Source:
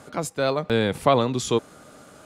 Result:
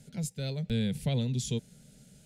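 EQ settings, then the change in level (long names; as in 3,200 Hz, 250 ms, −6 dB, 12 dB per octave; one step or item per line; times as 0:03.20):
guitar amp tone stack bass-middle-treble 6-0-2
low-shelf EQ 310 Hz +11 dB
phaser with its sweep stopped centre 310 Hz, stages 6
+8.5 dB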